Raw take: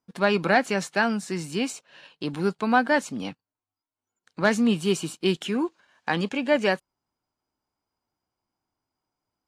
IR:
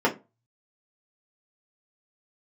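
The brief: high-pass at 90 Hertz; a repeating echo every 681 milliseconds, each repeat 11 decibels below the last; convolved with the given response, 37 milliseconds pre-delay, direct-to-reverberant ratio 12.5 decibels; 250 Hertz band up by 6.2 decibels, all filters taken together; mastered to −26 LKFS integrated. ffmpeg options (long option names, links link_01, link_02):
-filter_complex "[0:a]highpass=90,equalizer=frequency=250:width_type=o:gain=7.5,aecho=1:1:681|1362|2043:0.282|0.0789|0.0221,asplit=2[link_01][link_02];[1:a]atrim=start_sample=2205,adelay=37[link_03];[link_02][link_03]afir=irnorm=-1:irlink=0,volume=-28.5dB[link_04];[link_01][link_04]amix=inputs=2:normalize=0,volume=-4.5dB"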